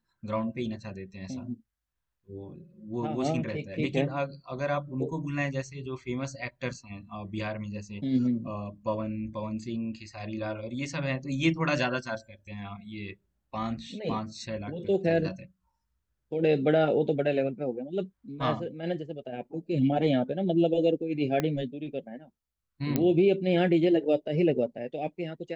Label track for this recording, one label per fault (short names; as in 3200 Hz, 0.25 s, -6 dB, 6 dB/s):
21.400000	21.400000	pop -14 dBFS
22.960000	22.960000	pop -12 dBFS